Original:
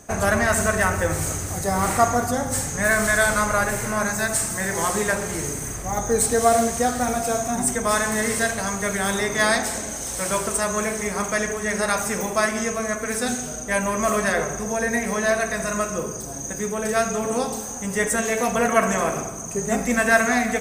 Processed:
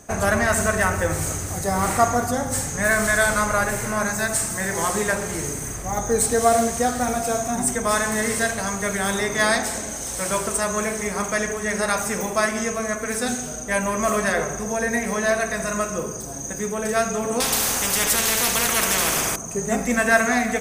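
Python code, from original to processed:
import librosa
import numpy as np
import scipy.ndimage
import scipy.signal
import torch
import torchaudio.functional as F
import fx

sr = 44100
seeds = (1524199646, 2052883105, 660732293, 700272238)

y = fx.spectral_comp(x, sr, ratio=4.0, at=(17.4, 19.36))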